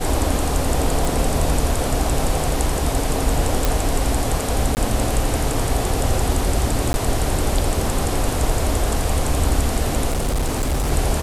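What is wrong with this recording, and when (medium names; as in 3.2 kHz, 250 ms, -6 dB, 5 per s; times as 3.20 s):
1.05 s: pop
3.65 s: pop
4.75–4.77 s: dropout 19 ms
6.93–6.94 s: dropout
10.09–10.91 s: clipped -16.5 dBFS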